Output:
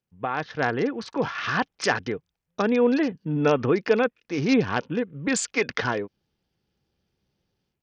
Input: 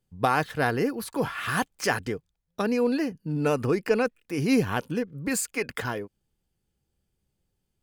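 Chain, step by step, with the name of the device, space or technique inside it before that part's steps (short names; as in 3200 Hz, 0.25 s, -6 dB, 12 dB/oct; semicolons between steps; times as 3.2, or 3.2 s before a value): Bluetooth headset (HPF 140 Hz 6 dB/oct; AGC gain up to 12 dB; downsampling 16000 Hz; gain -6 dB; SBC 64 kbps 48000 Hz)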